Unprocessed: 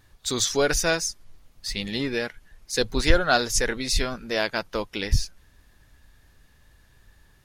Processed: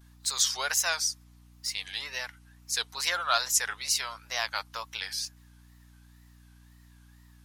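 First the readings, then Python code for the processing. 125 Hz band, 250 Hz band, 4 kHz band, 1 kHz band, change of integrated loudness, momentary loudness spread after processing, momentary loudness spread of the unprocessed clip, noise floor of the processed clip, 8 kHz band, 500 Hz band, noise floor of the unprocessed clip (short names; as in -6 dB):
-20.0 dB, -26.5 dB, -2.0 dB, -3.5 dB, -4.0 dB, 11 LU, 10 LU, -56 dBFS, 0.0 dB, -16.5 dB, -59 dBFS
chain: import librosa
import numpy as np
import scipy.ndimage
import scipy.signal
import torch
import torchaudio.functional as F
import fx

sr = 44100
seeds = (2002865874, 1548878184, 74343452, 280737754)

y = fx.wow_flutter(x, sr, seeds[0], rate_hz=2.1, depth_cents=150.0)
y = fx.ladder_highpass(y, sr, hz=760.0, resonance_pct=40)
y = fx.high_shelf(y, sr, hz=3200.0, db=10.0)
y = fx.add_hum(y, sr, base_hz=60, snr_db=22)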